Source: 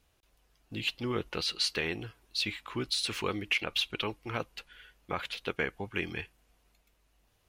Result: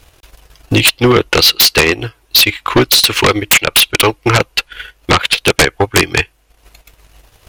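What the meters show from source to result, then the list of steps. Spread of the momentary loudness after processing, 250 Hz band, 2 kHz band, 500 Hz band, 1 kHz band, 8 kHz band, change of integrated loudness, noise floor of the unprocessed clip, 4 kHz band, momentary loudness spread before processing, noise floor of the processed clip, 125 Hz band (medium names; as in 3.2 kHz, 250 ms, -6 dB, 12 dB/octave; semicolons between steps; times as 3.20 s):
9 LU, +21.5 dB, +21.5 dB, +22.5 dB, +23.5 dB, +27.5 dB, +22.5 dB, -71 dBFS, +22.0 dB, 10 LU, -54 dBFS, +23.5 dB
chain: peaking EQ 200 Hz -13.5 dB 0.42 oct; transient shaper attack +10 dB, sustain -12 dB; sine folder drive 17 dB, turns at -7 dBFS; trim +3.5 dB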